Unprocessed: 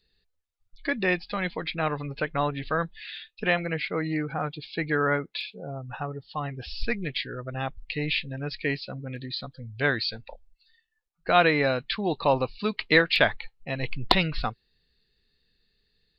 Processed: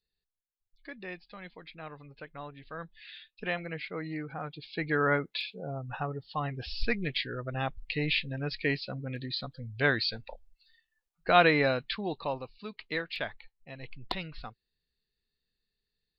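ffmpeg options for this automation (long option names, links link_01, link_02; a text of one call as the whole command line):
ffmpeg -i in.wav -af "volume=-1.5dB,afade=type=in:start_time=2.69:duration=0.41:silence=0.398107,afade=type=in:start_time=4.45:duration=0.68:silence=0.446684,afade=type=out:start_time=11.56:duration=0.85:silence=0.237137" out.wav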